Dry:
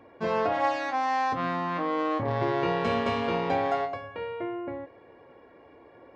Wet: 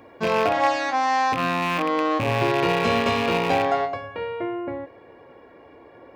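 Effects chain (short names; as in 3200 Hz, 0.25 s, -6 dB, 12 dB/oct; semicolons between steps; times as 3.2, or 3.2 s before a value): rattling part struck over -36 dBFS, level -25 dBFS; high shelf 4600 Hz +9.5 dB, from 3.64 s +2 dB; gain +5 dB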